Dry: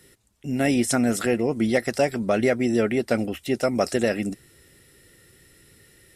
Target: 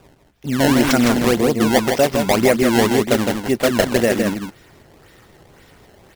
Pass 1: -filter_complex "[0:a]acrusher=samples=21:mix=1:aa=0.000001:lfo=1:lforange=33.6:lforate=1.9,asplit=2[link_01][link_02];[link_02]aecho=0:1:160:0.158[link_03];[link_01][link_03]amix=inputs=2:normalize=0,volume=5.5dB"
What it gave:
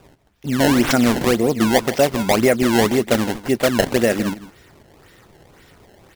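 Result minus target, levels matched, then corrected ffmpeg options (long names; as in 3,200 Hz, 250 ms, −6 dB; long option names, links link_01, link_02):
echo-to-direct −10.5 dB
-filter_complex "[0:a]acrusher=samples=21:mix=1:aa=0.000001:lfo=1:lforange=33.6:lforate=1.9,asplit=2[link_01][link_02];[link_02]aecho=0:1:160:0.531[link_03];[link_01][link_03]amix=inputs=2:normalize=0,volume=5.5dB"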